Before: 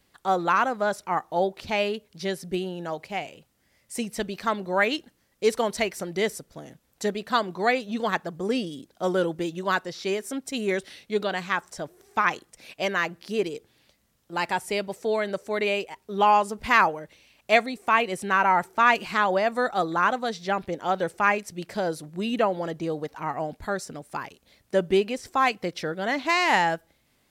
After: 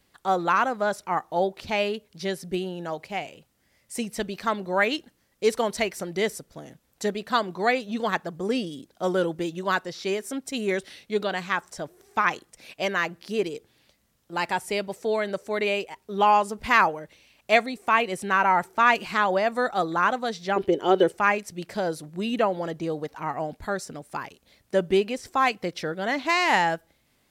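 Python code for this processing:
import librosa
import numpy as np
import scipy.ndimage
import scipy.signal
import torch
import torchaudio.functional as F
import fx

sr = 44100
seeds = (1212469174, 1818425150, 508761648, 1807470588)

y = fx.small_body(x, sr, hz=(390.0, 3000.0), ring_ms=35, db=16, at=(20.56, 21.12))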